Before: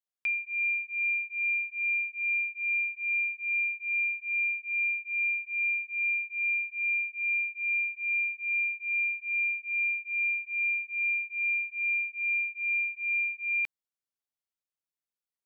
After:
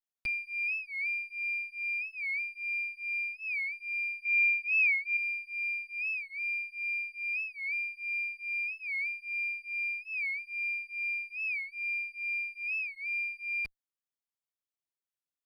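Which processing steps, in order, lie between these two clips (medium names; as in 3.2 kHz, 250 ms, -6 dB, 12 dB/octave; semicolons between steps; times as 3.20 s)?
comb filter that takes the minimum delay 7.1 ms; gain riding 2 s; 4.25–5.17 s: peaking EQ 2.2 kHz +14.5 dB 0.28 oct; warped record 45 rpm, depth 160 cents; trim -5 dB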